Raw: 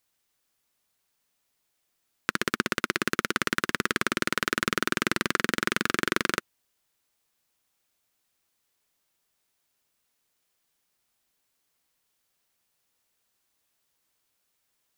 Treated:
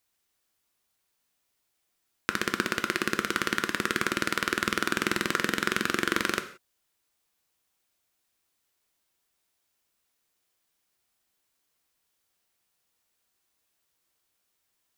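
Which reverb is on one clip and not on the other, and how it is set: gated-style reverb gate 200 ms falling, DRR 7.5 dB; trim -1.5 dB

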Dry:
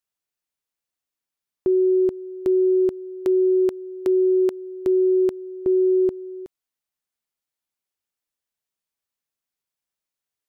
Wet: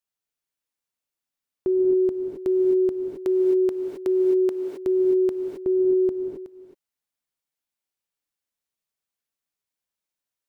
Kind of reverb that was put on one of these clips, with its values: gated-style reverb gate 290 ms rising, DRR 2.5 dB; trim -3 dB

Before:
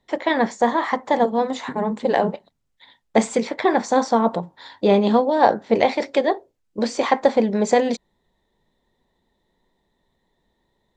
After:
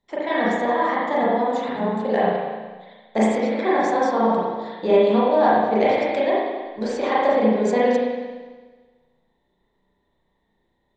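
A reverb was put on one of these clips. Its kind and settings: spring tank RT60 1.4 s, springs 32/37 ms, chirp 65 ms, DRR -8 dB; trim -8.5 dB

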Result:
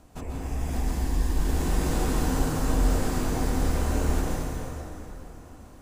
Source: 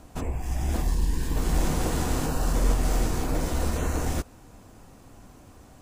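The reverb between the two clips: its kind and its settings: plate-style reverb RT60 3.5 s, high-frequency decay 0.7×, pre-delay 110 ms, DRR -4 dB; trim -5.5 dB

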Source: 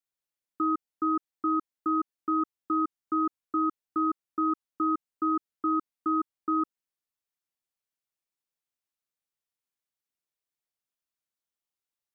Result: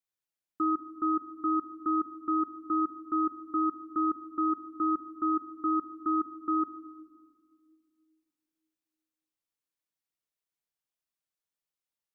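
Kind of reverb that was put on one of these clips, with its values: simulated room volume 2900 m³, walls mixed, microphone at 0.6 m; trim -2.5 dB

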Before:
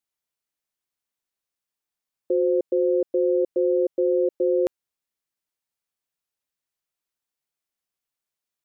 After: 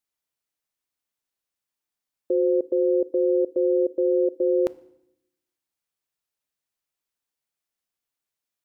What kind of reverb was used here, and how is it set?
FDN reverb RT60 0.78 s, low-frequency decay 1.4×, high-frequency decay 0.95×, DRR 17 dB

